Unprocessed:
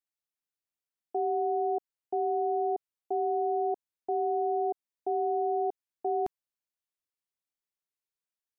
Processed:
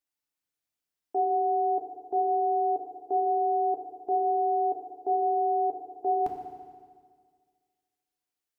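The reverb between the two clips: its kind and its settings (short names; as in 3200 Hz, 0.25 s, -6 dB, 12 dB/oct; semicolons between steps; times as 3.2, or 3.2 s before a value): FDN reverb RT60 1.8 s, low-frequency decay 1.1×, high-frequency decay 1×, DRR 1 dB; gain +1.5 dB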